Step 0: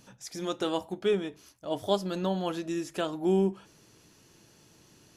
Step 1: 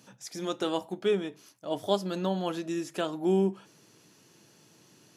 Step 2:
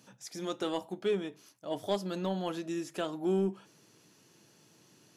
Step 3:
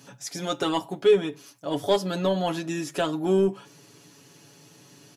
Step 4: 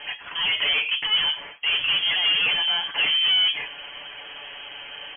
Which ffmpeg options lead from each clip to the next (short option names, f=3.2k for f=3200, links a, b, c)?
-af "highpass=f=120:w=0.5412,highpass=f=120:w=1.3066"
-af "asoftclip=type=tanh:threshold=-16.5dB,volume=-3dB"
-af "aecho=1:1:7.1:0.72,volume=8dB"
-filter_complex "[0:a]asplit=2[a][b];[b]highpass=f=720:p=1,volume=34dB,asoftclip=type=tanh:threshold=-10dB[c];[a][c]amix=inputs=2:normalize=0,lowpass=f=1.7k:p=1,volume=-6dB,flanger=delay=3.1:depth=2.7:regen=-64:speed=0.8:shape=sinusoidal,lowpass=f=2.9k:t=q:w=0.5098,lowpass=f=2.9k:t=q:w=0.6013,lowpass=f=2.9k:t=q:w=0.9,lowpass=f=2.9k:t=q:w=2.563,afreqshift=-3400"